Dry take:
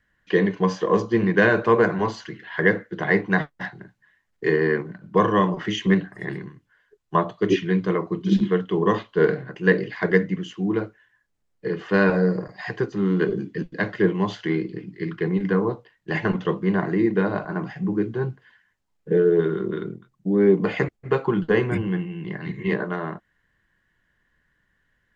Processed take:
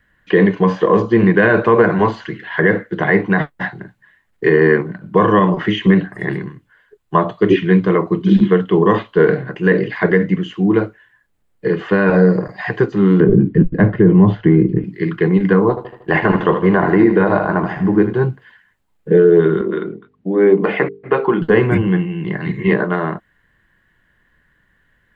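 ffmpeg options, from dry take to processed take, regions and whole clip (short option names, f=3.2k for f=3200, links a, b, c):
-filter_complex "[0:a]asettb=1/sr,asplit=3[a][b][c];[a]atrim=end=13.204[d];[b]atrim=start=13.2:end=14.84,asetpts=PTS-STARTPTS,afade=t=in:d=0.004:c=qsin,afade=t=out:st=1.636:d=0.004:c=qsin,lowpass=f=1.7k:p=1,aemphasis=mode=reproduction:type=riaa[e];[c]atrim=start=14.836[f];[d][e]acrossfade=d=0.004:c1=hsin:c2=qsin[g];[g][f]acrossfade=d=0.004:c1=qsin:c2=hsin,asettb=1/sr,asplit=3[h][i][j];[h]atrim=end=15.694[k];[i]atrim=start=15.69:end=18.13,asetpts=PTS-STARTPTS,afade=t=in:d=0.004:c=qsin,afade=t=out:st=2.436:d=0.004:c=qsin,equalizer=f=880:w=0.56:g=7,aecho=1:1:78|156|234|312|390|468:0.282|0.147|0.0762|0.0396|0.0206|0.0107,atrim=end_sample=107604,tremolo=f=90:d=0.4[l];[j]atrim=start=18.126[m];[k][l]acrossfade=d=0.004:c1=hsin:c2=qsin[n];[n][m]acrossfade=d=0.004:c1=qsin:c2=hsin,asettb=1/sr,asplit=3[o][p][q];[o]atrim=end=19.614[r];[p]atrim=start=19.61:end=21.42,asetpts=PTS-STARTPTS,afade=t=in:d=0.004:c=qsin,afade=t=out:st=1.806:d=0.004:c=qsin,bandreject=f=50:t=h:w=6,bandreject=f=100:t=h:w=6,bandreject=f=150:t=h:w=6,bandreject=f=200:t=h:w=6,bandreject=f=250:t=h:w=6,bandreject=f=300:t=h:w=6,bandreject=f=350:t=h:w=6,bandreject=f=400:t=h:w=6,bandreject=f=450:t=h:w=6,aeval=exprs='val(0)+0.00141*(sin(2*PI*50*n/s)+sin(2*PI*2*50*n/s)/2+sin(2*PI*3*50*n/s)/3+sin(2*PI*4*50*n/s)/4+sin(2*PI*5*50*n/s)/5)':c=same,highpass=240,lowpass=3.4k[s];[q]atrim=start=21.416[t];[r][s]acrossfade=d=0.004:c1=hsin:c2=qsin[u];[u][t]acrossfade=d=0.004:c1=qsin:c2=hsin,acrossover=split=3500[v][w];[w]acompressor=threshold=-53dB:ratio=4:attack=1:release=60[x];[v][x]amix=inputs=2:normalize=0,equalizer=f=5.7k:w=1.6:g=-7.5,alimiter=level_in=10.5dB:limit=-1dB:release=50:level=0:latency=1,volume=-1dB"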